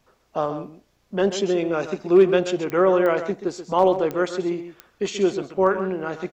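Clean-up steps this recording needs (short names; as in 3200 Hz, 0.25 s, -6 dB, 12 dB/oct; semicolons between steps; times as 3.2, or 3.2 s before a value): de-click; inverse comb 0.132 s -11 dB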